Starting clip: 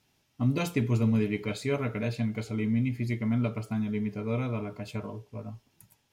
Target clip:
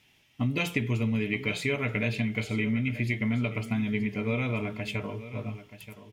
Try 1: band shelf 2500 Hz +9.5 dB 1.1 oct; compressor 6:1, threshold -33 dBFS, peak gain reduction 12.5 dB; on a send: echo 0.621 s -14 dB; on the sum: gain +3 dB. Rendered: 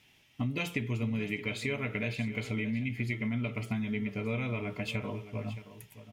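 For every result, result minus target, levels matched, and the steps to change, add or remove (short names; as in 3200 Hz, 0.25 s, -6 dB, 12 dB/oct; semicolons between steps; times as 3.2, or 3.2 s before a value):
echo 0.308 s early; compressor: peak gain reduction +5 dB
change: echo 0.929 s -14 dB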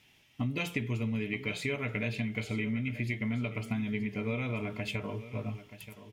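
compressor: peak gain reduction +5 dB
change: compressor 6:1, threshold -27 dBFS, peak gain reduction 7.5 dB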